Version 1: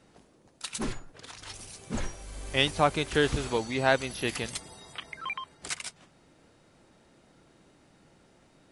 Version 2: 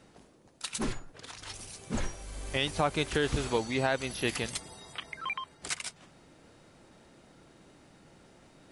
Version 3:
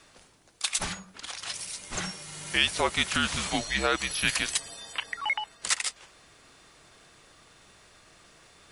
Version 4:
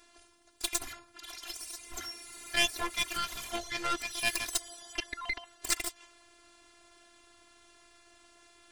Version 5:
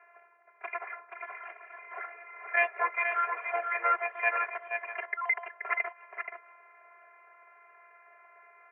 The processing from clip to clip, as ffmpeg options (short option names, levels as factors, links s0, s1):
-af "alimiter=limit=0.158:level=0:latency=1:release=153,areverse,acompressor=mode=upward:threshold=0.00282:ratio=2.5,areverse"
-af "tiltshelf=f=640:g=-9,afreqshift=-200"
-af "afftfilt=real='hypot(re,im)*cos(PI*b)':imag='0':win_size=512:overlap=0.75,aeval=exprs='0.447*(cos(1*acos(clip(val(0)/0.447,-1,1)))-cos(1*PI/2))+0.0794*(cos(8*acos(clip(val(0)/0.447,-1,1)))-cos(8*PI/2))':c=same"
-filter_complex "[0:a]asuperpass=centerf=1000:order=20:qfactor=0.52,asplit=2[s0][s1];[s1]aecho=0:1:478:0.473[s2];[s0][s2]amix=inputs=2:normalize=0,volume=2.24"